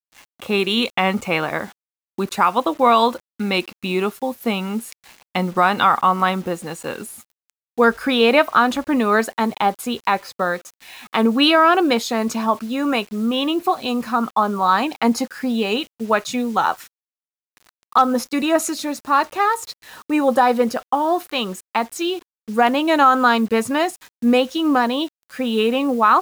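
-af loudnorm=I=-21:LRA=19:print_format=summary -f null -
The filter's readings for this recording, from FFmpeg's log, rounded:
Input Integrated:    -19.2 LUFS
Input True Peak:      -2.6 dBTP
Input LRA:             2.7 LU
Input Threshold:     -29.6 LUFS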